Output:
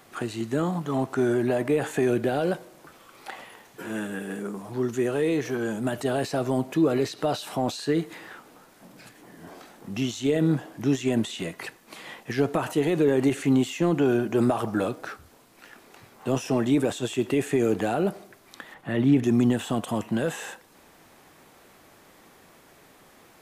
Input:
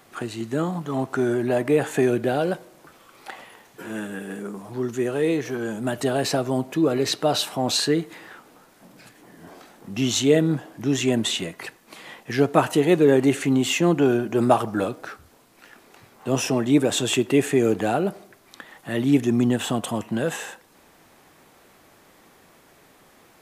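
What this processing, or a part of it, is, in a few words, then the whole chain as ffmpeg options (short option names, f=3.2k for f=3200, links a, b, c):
de-esser from a sidechain: -filter_complex "[0:a]asettb=1/sr,asplit=3[a][b][c];[a]atrim=end=18.744[d];[b]atrim=start=18.74:end=19.24,asetpts=PTS-STARTPTS,afade=t=in:d=0.004:c=qsin,afade=t=out:st=0.496:d=0.004:c=qsin,bass=f=250:g=3,treble=f=4k:g=-12[e];[c]atrim=start=19.236[f];[d][e]acrossfade=d=0.004:c1=hsin:c2=qsin[g];[g][f]acrossfade=d=0.004:c1=qsin:c2=hsin,asplit=2[h][i];[i]highpass=f=5.7k:p=1,apad=whole_len=1032427[j];[h][j]sidechaincompress=threshold=-38dB:ratio=6:attack=2.7:release=52"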